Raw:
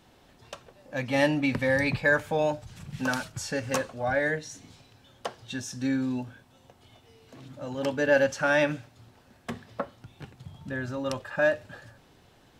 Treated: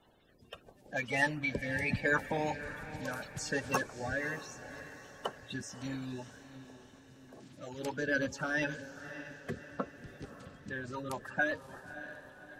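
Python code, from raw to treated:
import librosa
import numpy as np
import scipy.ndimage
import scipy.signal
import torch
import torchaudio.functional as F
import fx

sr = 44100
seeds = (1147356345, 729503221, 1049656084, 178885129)

y = fx.spec_quant(x, sr, step_db=30)
y = fx.rotary_switch(y, sr, hz=0.75, then_hz=8.0, switch_at_s=10.33)
y = fx.hpss(y, sr, part='harmonic', gain_db=-9)
y = fx.echo_diffused(y, sr, ms=597, feedback_pct=51, wet_db=-12.5)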